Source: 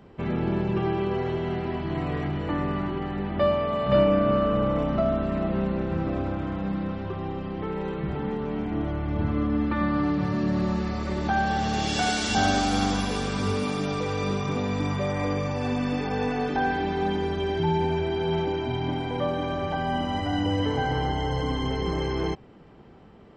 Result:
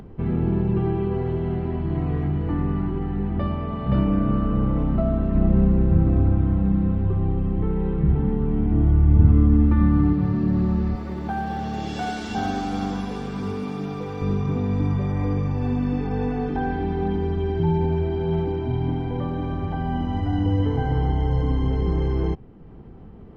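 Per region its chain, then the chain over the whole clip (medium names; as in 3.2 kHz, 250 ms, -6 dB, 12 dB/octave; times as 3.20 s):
5.35–10.13 s: low-pass 4.9 kHz 24 dB/octave + bass shelf 180 Hz +7.5 dB
10.95–14.22 s: high-pass 280 Hz 6 dB/octave + doubling 15 ms -12 dB + companded quantiser 6-bit
whole clip: tilt EQ -3.5 dB/octave; band-stop 590 Hz, Q 12; upward compressor, threshold -32 dBFS; trim -4 dB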